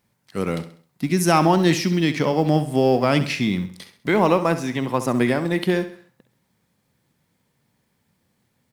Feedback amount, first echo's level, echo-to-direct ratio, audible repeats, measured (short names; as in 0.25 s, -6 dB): 41%, -12.5 dB, -11.5 dB, 3